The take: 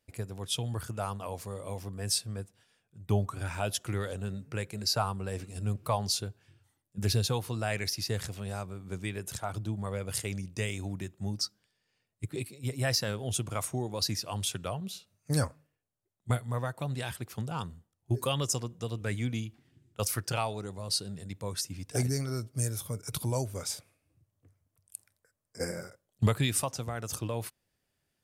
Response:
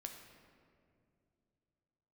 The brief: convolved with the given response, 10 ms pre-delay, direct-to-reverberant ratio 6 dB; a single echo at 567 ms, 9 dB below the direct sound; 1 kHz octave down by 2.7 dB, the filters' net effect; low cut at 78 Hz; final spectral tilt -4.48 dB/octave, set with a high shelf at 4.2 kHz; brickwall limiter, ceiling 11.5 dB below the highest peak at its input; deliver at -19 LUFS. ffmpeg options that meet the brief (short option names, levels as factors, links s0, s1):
-filter_complex "[0:a]highpass=78,equalizer=f=1000:t=o:g=-4,highshelf=f=4200:g=6,alimiter=limit=0.0794:level=0:latency=1,aecho=1:1:567:0.355,asplit=2[s0][s1];[1:a]atrim=start_sample=2205,adelay=10[s2];[s1][s2]afir=irnorm=-1:irlink=0,volume=0.794[s3];[s0][s3]amix=inputs=2:normalize=0,volume=5.31"